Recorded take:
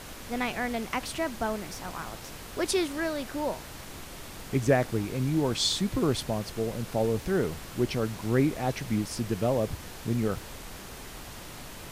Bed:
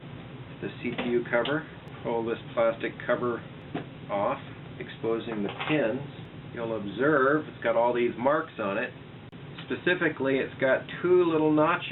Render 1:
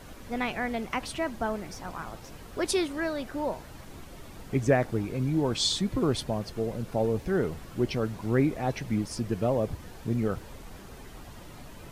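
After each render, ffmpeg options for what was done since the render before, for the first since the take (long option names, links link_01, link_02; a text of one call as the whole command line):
ffmpeg -i in.wav -af "afftdn=noise_reduction=9:noise_floor=-43" out.wav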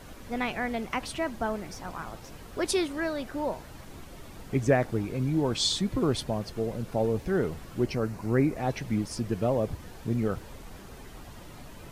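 ffmpeg -i in.wav -filter_complex "[0:a]asettb=1/sr,asplit=3[link_01][link_02][link_03];[link_01]atrim=end=7.864[link_04];[link_02]atrim=start=7.86:end=8.57,asetpts=PTS-STARTPTS,afade=type=in:duration=0.004:curve=qsin,afade=type=out:start_time=0.706:duration=0.004:curve=qsin,equalizer=frequency=3400:width_type=o:width=0.35:gain=-10[link_05];[link_03]atrim=start=8.566[link_06];[link_04][link_05]acrossfade=duration=0.004:curve1=hsin:curve2=qsin[link_07];[link_07][link_06]acrossfade=duration=0.004:curve1=qsin:curve2=hsin" out.wav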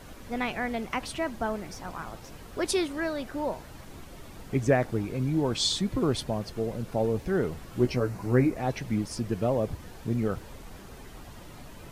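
ffmpeg -i in.wav -filter_complex "[0:a]asettb=1/sr,asplit=3[link_01][link_02][link_03];[link_01]atrim=end=7.714[link_04];[link_02]atrim=start=7.71:end=8.5,asetpts=PTS-STARTPTS,afade=type=in:duration=0.004:curve=qsin,afade=type=out:start_time=0.786:duration=0.004:curve=qsin,asplit=2[link_05][link_06];[link_06]adelay=16,volume=-5dB[link_07];[link_05][link_07]amix=inputs=2:normalize=0,atrim=end_sample=34839[link_08];[link_03]atrim=start=8.496[link_09];[link_04][link_08]acrossfade=duration=0.004:curve1=hsin:curve2=qsin[link_10];[link_10][link_09]acrossfade=duration=0.004:curve1=qsin:curve2=hsin" out.wav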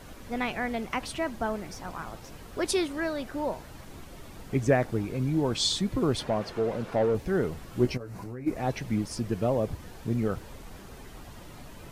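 ffmpeg -i in.wav -filter_complex "[0:a]asettb=1/sr,asplit=3[link_01][link_02][link_03];[link_01]atrim=end=6.194[link_04];[link_02]atrim=start=6.19:end=7.15,asetpts=PTS-STARTPTS,afade=type=in:duration=0.004:curve=qsin,afade=type=out:start_time=0.956:duration=0.004:curve=qsin,asplit=2[link_05][link_06];[link_06]highpass=frequency=720:poles=1,volume=16dB,asoftclip=type=tanh:threshold=-16dB[link_07];[link_05][link_07]amix=inputs=2:normalize=0,lowpass=frequency=1600:poles=1,volume=-6dB[link_08];[link_03]atrim=start=7.146[link_09];[link_04][link_08]acrossfade=duration=0.004:curve1=hsin:curve2=qsin[link_10];[link_10][link_09]acrossfade=duration=0.004:curve1=qsin:curve2=hsin,asplit=3[link_11][link_12][link_13];[link_11]afade=type=out:start_time=7.96:duration=0.02[link_14];[link_12]acompressor=threshold=-35dB:ratio=10:attack=3.2:release=140:knee=1:detection=peak,afade=type=in:start_time=7.96:duration=0.02,afade=type=out:start_time=8.46:duration=0.02[link_15];[link_13]afade=type=in:start_time=8.46:duration=0.02[link_16];[link_14][link_15][link_16]amix=inputs=3:normalize=0" out.wav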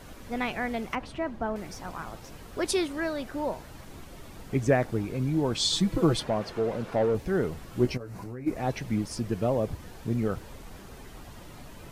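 ffmpeg -i in.wav -filter_complex "[0:a]asettb=1/sr,asplit=3[link_01][link_02][link_03];[link_01]atrim=end=0.954[link_04];[link_02]atrim=start=0.95:end=1.56,asetpts=PTS-STARTPTS,afade=type=in:duration=0.004:curve=qsin,afade=type=out:start_time=0.606:duration=0.004:curve=qsin,lowpass=frequency=1500:poles=1[link_05];[link_03]atrim=start=1.556[link_06];[link_04][link_05]acrossfade=duration=0.004:curve1=hsin:curve2=qsin[link_07];[link_07][link_06]acrossfade=duration=0.004:curve1=qsin:curve2=hsin,asettb=1/sr,asplit=3[link_08][link_09][link_10];[link_08]atrim=end=5.724[link_11];[link_09]atrim=start=5.72:end=6.2,asetpts=PTS-STARTPTS,afade=type=in:duration=0.004:curve=qsin,afade=type=out:start_time=0.476:duration=0.004:curve=qsin,aecho=1:1:6.1:0.94,atrim=end_sample=21168[link_12];[link_10]atrim=start=6.196[link_13];[link_11][link_12]acrossfade=duration=0.004:curve1=hsin:curve2=qsin[link_14];[link_14][link_13]acrossfade=duration=0.004:curve1=qsin:curve2=hsin" out.wav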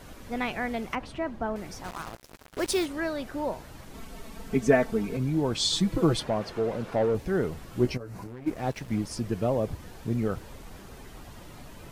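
ffmpeg -i in.wav -filter_complex "[0:a]asettb=1/sr,asplit=3[link_01][link_02][link_03];[link_01]atrim=end=1.844[link_04];[link_02]atrim=start=1.84:end=2.86,asetpts=PTS-STARTPTS,afade=type=in:duration=0.004:curve=qsin,afade=type=out:start_time=1.016:duration=0.004:curve=qsin,acrusher=bits=5:mix=0:aa=0.5[link_05];[link_03]atrim=start=2.856[link_06];[link_04][link_05]acrossfade=duration=0.004:curve1=hsin:curve2=qsin[link_07];[link_07][link_06]acrossfade=duration=0.004:curve1=qsin:curve2=hsin,asettb=1/sr,asplit=3[link_08][link_09][link_10];[link_08]atrim=end=3.944[link_11];[link_09]atrim=start=3.94:end=5.17,asetpts=PTS-STARTPTS,afade=type=in:duration=0.004:curve=qsin,afade=type=out:start_time=1.226:duration=0.004:curve=qsin,aecho=1:1:4.5:0.84,atrim=end_sample=54243[link_12];[link_10]atrim=start=5.166[link_13];[link_11][link_12]acrossfade=duration=0.004:curve1=hsin:curve2=qsin[link_14];[link_14][link_13]acrossfade=duration=0.004:curve1=qsin:curve2=hsin,asettb=1/sr,asplit=3[link_15][link_16][link_17];[link_15]atrim=end=8.274[link_18];[link_16]atrim=start=8.27:end=8.99,asetpts=PTS-STARTPTS,afade=type=in:duration=0.004:curve=qsin,afade=type=out:start_time=0.716:duration=0.004:curve=qsin,aeval=exprs='sgn(val(0))*max(abs(val(0))-0.00562,0)':channel_layout=same[link_19];[link_17]atrim=start=8.986[link_20];[link_18][link_19]acrossfade=duration=0.004:curve1=hsin:curve2=qsin[link_21];[link_21][link_20]acrossfade=duration=0.004:curve1=qsin:curve2=hsin" out.wav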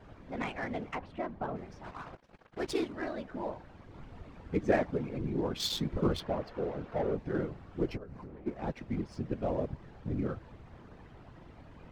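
ffmpeg -i in.wav -af "afftfilt=real='hypot(re,im)*cos(2*PI*random(0))':imag='hypot(re,im)*sin(2*PI*random(1))':win_size=512:overlap=0.75,adynamicsmooth=sensitivity=7:basefreq=2500" out.wav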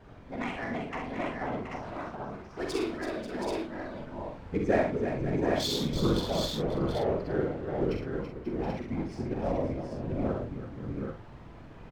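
ffmpeg -i in.wav -filter_complex "[0:a]asplit=2[link_01][link_02];[link_02]adelay=45,volume=-5.5dB[link_03];[link_01][link_03]amix=inputs=2:normalize=0,aecho=1:1:66|332|539|725|785:0.531|0.376|0.237|0.398|0.596" out.wav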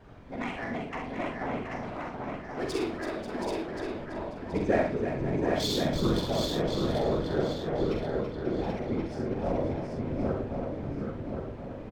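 ffmpeg -i in.wav -filter_complex "[0:a]asplit=2[link_01][link_02];[link_02]adelay=1078,lowpass=frequency=3700:poles=1,volume=-6dB,asplit=2[link_03][link_04];[link_04]adelay=1078,lowpass=frequency=3700:poles=1,volume=0.43,asplit=2[link_05][link_06];[link_06]adelay=1078,lowpass=frequency=3700:poles=1,volume=0.43,asplit=2[link_07][link_08];[link_08]adelay=1078,lowpass=frequency=3700:poles=1,volume=0.43,asplit=2[link_09][link_10];[link_10]adelay=1078,lowpass=frequency=3700:poles=1,volume=0.43[link_11];[link_01][link_03][link_05][link_07][link_09][link_11]amix=inputs=6:normalize=0" out.wav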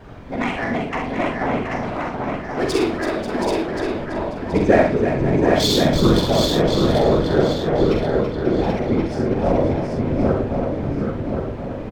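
ffmpeg -i in.wav -af "volume=11.5dB,alimiter=limit=-1dB:level=0:latency=1" out.wav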